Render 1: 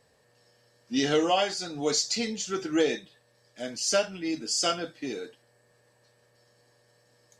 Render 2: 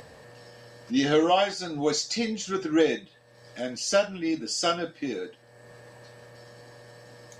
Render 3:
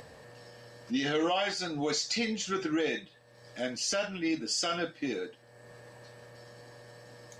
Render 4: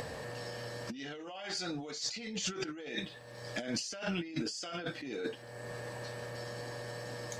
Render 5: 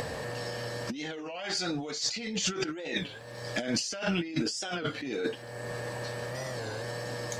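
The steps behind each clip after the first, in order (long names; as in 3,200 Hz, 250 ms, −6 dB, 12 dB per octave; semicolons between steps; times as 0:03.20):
high-shelf EQ 4,100 Hz −9 dB; notch filter 410 Hz, Q 12; in parallel at −0.5 dB: upward compression, threshold −30 dBFS; on the sum: level −2.5 dB
dynamic equaliser 2,300 Hz, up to +6 dB, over −42 dBFS, Q 0.74; brickwall limiter −18.5 dBFS, peak gain reduction 10.5 dB; level −2.5 dB
compressor whose output falls as the input rises −41 dBFS, ratio −1; level +1.5 dB
wow of a warped record 33 1/3 rpm, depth 160 cents; level +6 dB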